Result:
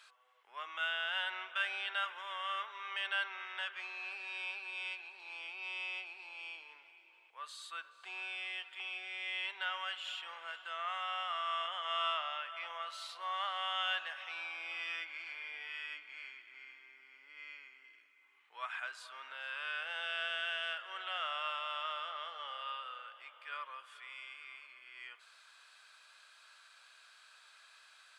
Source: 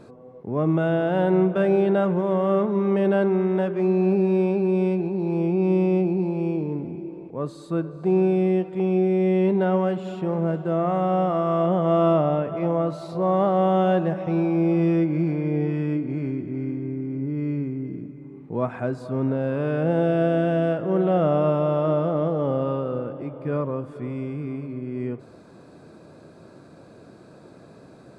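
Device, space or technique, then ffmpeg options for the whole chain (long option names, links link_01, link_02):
headphones lying on a table: -af "highpass=frequency=1400:width=0.5412,highpass=frequency=1400:width=1.3066,equalizer=frequency=3100:width_type=o:width=0.39:gain=11.5"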